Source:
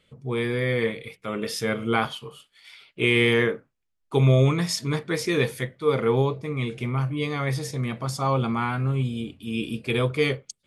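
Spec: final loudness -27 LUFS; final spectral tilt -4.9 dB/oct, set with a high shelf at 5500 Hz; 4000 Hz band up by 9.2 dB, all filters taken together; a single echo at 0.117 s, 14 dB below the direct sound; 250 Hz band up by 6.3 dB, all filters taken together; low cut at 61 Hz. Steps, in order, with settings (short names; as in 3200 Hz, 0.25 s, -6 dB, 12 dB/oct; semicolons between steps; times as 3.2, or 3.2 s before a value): HPF 61 Hz; bell 250 Hz +8 dB; bell 4000 Hz +9 dB; high shelf 5500 Hz +8.5 dB; echo 0.117 s -14 dB; gain -6 dB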